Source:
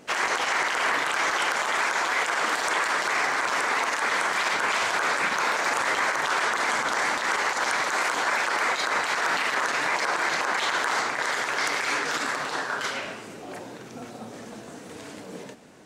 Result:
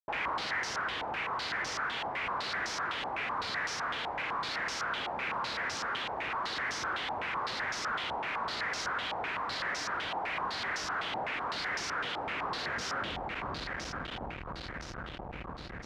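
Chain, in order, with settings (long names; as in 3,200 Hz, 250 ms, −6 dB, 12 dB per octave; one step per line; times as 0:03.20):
comparator with hysteresis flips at −32.5 dBFS
echo machine with several playback heads 252 ms, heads all three, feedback 68%, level −10 dB
soft clipping −30.5 dBFS, distortion −8 dB
high-pass filter 50 Hz
low-pass on a step sequencer 7.9 Hz 830–5,600 Hz
level −7 dB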